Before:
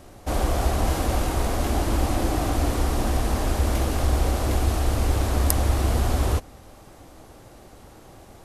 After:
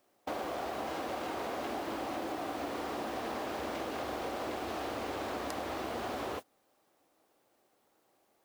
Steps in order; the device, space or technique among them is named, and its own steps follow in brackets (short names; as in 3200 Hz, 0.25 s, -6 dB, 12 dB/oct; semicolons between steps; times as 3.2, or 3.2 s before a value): baby monitor (BPF 320–3800 Hz; compressor 12:1, threshold -32 dBFS, peak gain reduction 9 dB; white noise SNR 19 dB; gate -38 dBFS, range -21 dB); gain -1.5 dB